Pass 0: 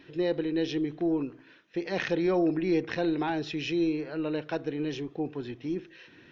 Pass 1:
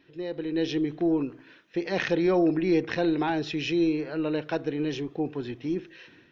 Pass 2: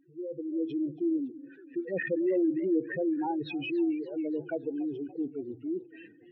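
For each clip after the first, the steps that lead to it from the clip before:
level rider gain up to 10.5 dB; trim -7.5 dB
spectral contrast enhancement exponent 3.6; modulated delay 283 ms, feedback 58%, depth 160 cents, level -19.5 dB; trim -3.5 dB

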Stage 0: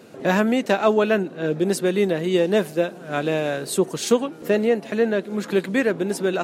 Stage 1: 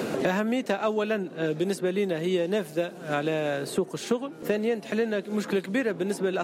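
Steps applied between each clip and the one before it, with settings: three bands compressed up and down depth 100%; trim -7 dB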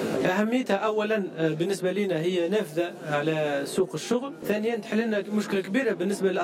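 chorus 0.57 Hz, delay 18 ms, depth 2.6 ms; trim +4.5 dB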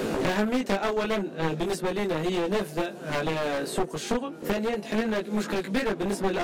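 one-sided wavefolder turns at -24 dBFS

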